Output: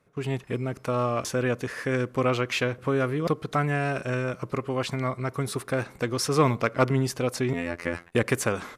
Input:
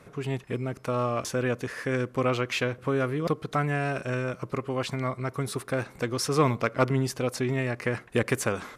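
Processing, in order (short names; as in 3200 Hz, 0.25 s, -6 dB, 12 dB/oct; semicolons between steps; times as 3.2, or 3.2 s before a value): gate -44 dBFS, range -17 dB; 7.53–8.12 robotiser 85.7 Hz; gain +1.5 dB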